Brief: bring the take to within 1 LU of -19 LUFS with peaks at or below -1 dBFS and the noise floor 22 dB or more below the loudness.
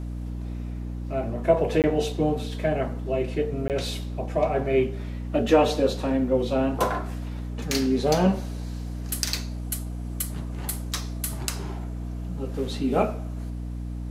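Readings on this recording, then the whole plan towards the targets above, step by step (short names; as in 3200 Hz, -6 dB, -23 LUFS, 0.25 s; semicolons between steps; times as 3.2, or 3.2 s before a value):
dropouts 2; longest dropout 18 ms; hum 60 Hz; harmonics up to 300 Hz; hum level -30 dBFS; loudness -26.5 LUFS; peak -4.5 dBFS; loudness target -19.0 LUFS
-> interpolate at 1.82/3.68, 18 ms; de-hum 60 Hz, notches 5; gain +7.5 dB; limiter -1 dBFS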